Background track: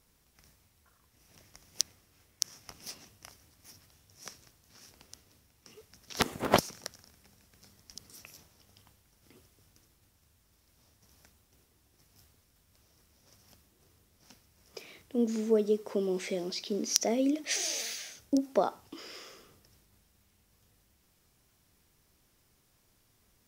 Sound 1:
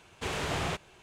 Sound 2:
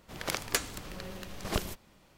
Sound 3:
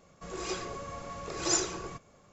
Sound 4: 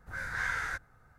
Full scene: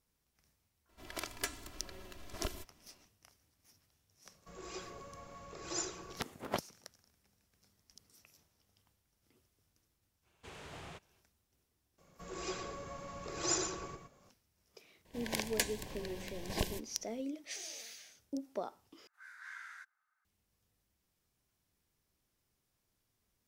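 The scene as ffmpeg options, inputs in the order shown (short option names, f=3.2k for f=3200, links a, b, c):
-filter_complex "[2:a]asplit=2[a][b];[3:a]asplit=2[c][d];[0:a]volume=-12.5dB[e];[a]aecho=1:1:3:0.69[f];[d]asplit=2[g][h];[h]adelay=116.6,volume=-6dB,highshelf=f=4k:g=-2.62[i];[g][i]amix=inputs=2:normalize=0[j];[b]asuperstop=centerf=1300:order=8:qfactor=3.1[k];[4:a]highpass=f=1.1k:w=0.5412,highpass=f=1.1k:w=1.3066[l];[e]asplit=2[m][n];[m]atrim=end=19.074[o];[l]atrim=end=1.18,asetpts=PTS-STARTPTS,volume=-15.5dB[p];[n]atrim=start=20.246[q];[f]atrim=end=2.17,asetpts=PTS-STARTPTS,volume=-10dB,afade=t=in:d=0.004:c=hsin,afade=t=out:st=2.166:d=0.004:c=hsin,adelay=890[r];[c]atrim=end=2.32,asetpts=PTS-STARTPTS,volume=-10.5dB,afade=t=in:d=0.004:c=hsin,afade=t=out:st=2.316:d=0.004:c=hsin,adelay=187425S[s];[1:a]atrim=end=1.02,asetpts=PTS-STARTPTS,volume=-17.5dB,afade=t=in:d=0.05,afade=t=out:st=0.97:d=0.05,adelay=10220[t];[j]atrim=end=2.32,asetpts=PTS-STARTPTS,volume=-6dB,afade=t=in:d=0.004:c=hsin,afade=t=out:st=2.316:d=0.004:c=hsin,adelay=11980[u];[k]atrim=end=2.17,asetpts=PTS-STARTPTS,volume=-3.5dB,afade=t=in:d=0.004:c=hsin,afade=t=out:st=2.166:d=0.004:c=hsin,adelay=15050[v];[o][p]acrossfade=d=0.004:c1=hsin:c2=hsin[w];[w][q]acrossfade=d=0.004:c1=hsin:c2=hsin[x];[x][r][s][t][u][v]amix=inputs=6:normalize=0"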